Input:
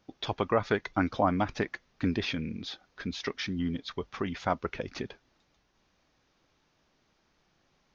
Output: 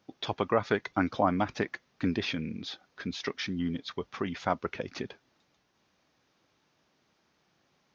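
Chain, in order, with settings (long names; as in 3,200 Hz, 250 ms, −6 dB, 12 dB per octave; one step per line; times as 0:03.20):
high-pass filter 99 Hz 12 dB per octave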